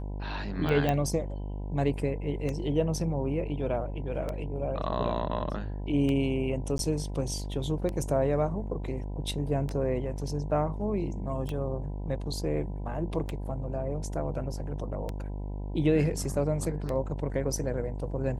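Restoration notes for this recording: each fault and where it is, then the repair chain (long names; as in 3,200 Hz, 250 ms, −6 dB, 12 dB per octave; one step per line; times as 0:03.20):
mains buzz 50 Hz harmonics 20 −35 dBFS
scratch tick 33 1/3 rpm −20 dBFS
0:00.89: click −15 dBFS
0:06.78–0:06.79: drop-out 12 ms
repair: click removal
hum removal 50 Hz, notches 20
repair the gap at 0:06.78, 12 ms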